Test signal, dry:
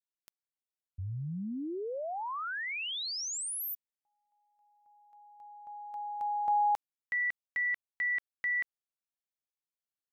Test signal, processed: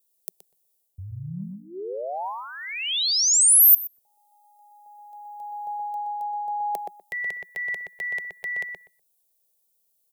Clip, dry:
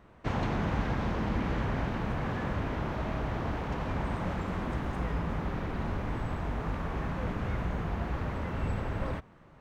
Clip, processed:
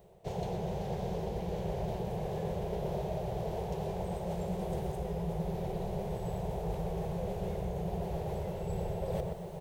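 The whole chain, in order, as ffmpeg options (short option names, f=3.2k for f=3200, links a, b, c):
-filter_complex "[0:a]firequalizer=gain_entry='entry(110,0);entry(180,9);entry(260,-24);entry(380,10);entry(760,5);entry(1200,-18);entry(2200,-13);entry(3400,-8);entry(5800,-8);entry(9600,-3)':delay=0.05:min_phase=1,areverse,acompressor=threshold=-40dB:ratio=20:attack=10:release=601:knee=1:detection=rms,areverse,crystalizer=i=7:c=0,asoftclip=type=tanh:threshold=-0.5dB,asplit=2[a][b];[b]adelay=123,lowpass=f=1.9k:p=1,volume=-3dB,asplit=2[c][d];[d]adelay=123,lowpass=f=1.9k:p=1,volume=0.18,asplit=2[e][f];[f]adelay=123,lowpass=f=1.9k:p=1,volume=0.18[g];[a][c][e][g]amix=inputs=4:normalize=0,volume=8dB"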